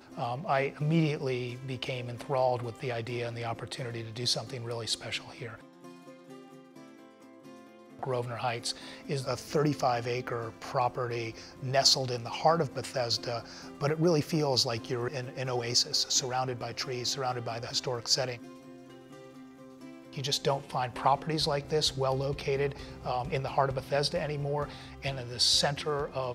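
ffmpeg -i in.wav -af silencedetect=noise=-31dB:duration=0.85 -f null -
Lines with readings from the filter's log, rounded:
silence_start: 5.46
silence_end: 8.03 | silence_duration: 2.57
silence_start: 18.35
silence_end: 20.18 | silence_duration: 1.83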